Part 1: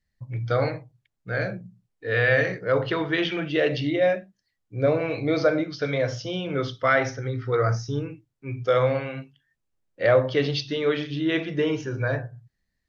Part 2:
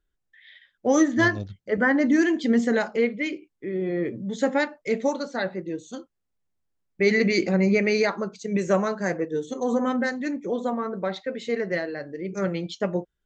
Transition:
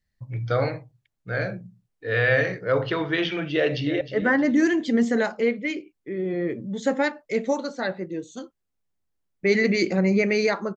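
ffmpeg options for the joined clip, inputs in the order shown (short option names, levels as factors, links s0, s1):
-filter_complex "[0:a]apad=whole_dur=10.76,atrim=end=10.76,atrim=end=4.012[s0];[1:a]atrim=start=1.568:end=8.32[s1];[s0][s1]acrossfade=d=0.004:c1=hsin:c2=hsin,asplit=2[s2][s3];[s3]afade=t=in:st=3.55:d=0.01,afade=t=out:st=4.01:d=0.01,aecho=0:1:310|620|930|1240:0.251189|0.087916|0.0307706|0.0107697[s4];[s2][s4]amix=inputs=2:normalize=0"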